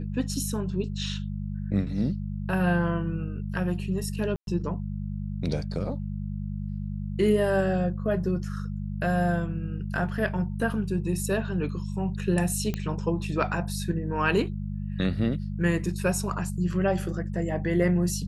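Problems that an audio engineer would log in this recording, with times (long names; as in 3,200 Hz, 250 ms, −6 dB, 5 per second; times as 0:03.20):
mains hum 50 Hz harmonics 4 −32 dBFS
0:04.36–0:04.47: drop-out 112 ms
0:12.74: click −16 dBFS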